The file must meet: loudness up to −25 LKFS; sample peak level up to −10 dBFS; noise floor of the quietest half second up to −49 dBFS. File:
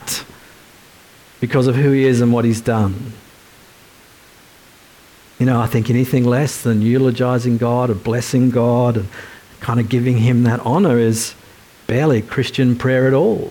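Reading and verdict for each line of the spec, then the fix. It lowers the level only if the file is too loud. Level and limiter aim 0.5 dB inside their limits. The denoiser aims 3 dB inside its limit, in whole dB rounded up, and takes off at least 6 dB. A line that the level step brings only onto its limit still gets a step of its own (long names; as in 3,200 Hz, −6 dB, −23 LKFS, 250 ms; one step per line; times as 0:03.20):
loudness −16.0 LKFS: out of spec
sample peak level −5.5 dBFS: out of spec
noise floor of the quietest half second −46 dBFS: out of spec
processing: level −9.5 dB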